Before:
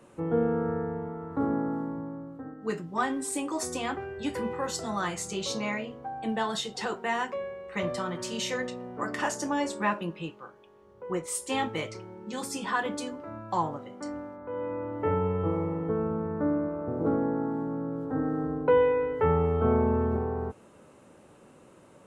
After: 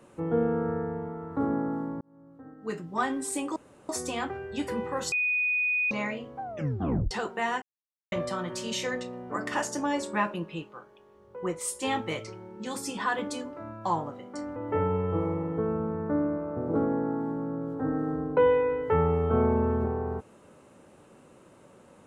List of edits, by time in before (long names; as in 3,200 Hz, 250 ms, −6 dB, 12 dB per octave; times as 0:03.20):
0:02.01–0:02.94: fade in
0:03.56: splice in room tone 0.33 s
0:04.79–0:05.58: beep over 2,480 Hz −23.5 dBFS
0:06.09: tape stop 0.69 s
0:07.29–0:07.79: silence
0:14.23–0:14.87: remove